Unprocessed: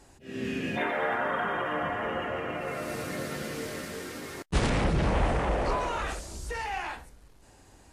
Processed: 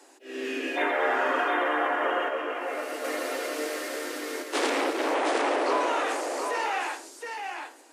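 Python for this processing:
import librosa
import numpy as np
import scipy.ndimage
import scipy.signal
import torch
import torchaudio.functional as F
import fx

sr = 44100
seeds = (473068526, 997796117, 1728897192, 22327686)

y = scipy.signal.sosfilt(scipy.signal.butter(16, 270.0, 'highpass', fs=sr, output='sos'), x)
y = y + 10.0 ** (-5.0 / 20.0) * np.pad(y, (int(718 * sr / 1000.0), 0))[:len(y)]
y = fx.detune_double(y, sr, cents=fx.line((2.28, 26.0), (3.03, 40.0)), at=(2.28, 3.03), fade=0.02)
y = y * librosa.db_to_amplitude(3.5)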